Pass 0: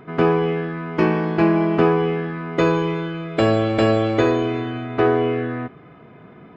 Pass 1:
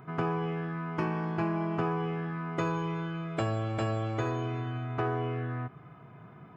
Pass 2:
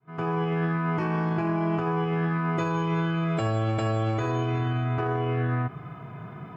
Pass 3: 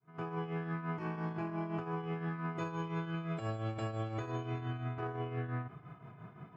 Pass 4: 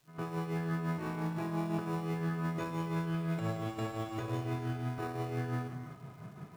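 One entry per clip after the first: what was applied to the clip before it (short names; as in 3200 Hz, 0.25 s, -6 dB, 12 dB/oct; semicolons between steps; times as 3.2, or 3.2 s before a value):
graphic EQ 125/250/500/2000/4000 Hz +10/-6/-9/-7/-10 dB; compressor 2:1, threshold -26 dBFS, peak gain reduction 7.5 dB; low shelf 260 Hz -10.5 dB
opening faded in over 0.66 s; harmonic-percussive split harmonic +6 dB; limiter -24.5 dBFS, peak gain reduction 11 dB; gain +5.5 dB
tremolo triangle 5.8 Hz, depth 65%; gain -9 dB
in parallel at -9.5 dB: sample-and-hold 28×; on the sum: crackle 570/s -58 dBFS; reverb, pre-delay 3 ms, DRR 6 dB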